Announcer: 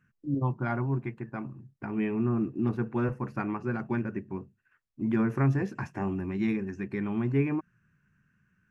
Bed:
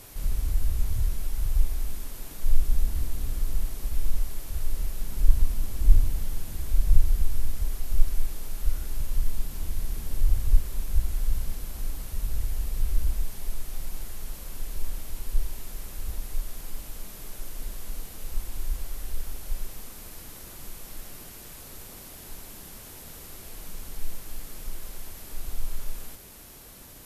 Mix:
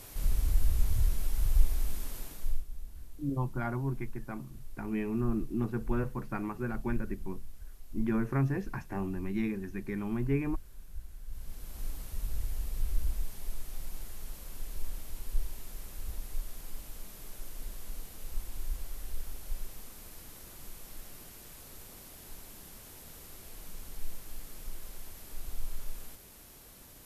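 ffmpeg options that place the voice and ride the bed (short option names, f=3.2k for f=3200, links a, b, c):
-filter_complex "[0:a]adelay=2950,volume=-4dB[a];[1:a]volume=11.5dB,afade=t=out:st=2.16:d=0.49:silence=0.133352,afade=t=in:st=11.26:d=0.59:silence=0.223872[b];[a][b]amix=inputs=2:normalize=0"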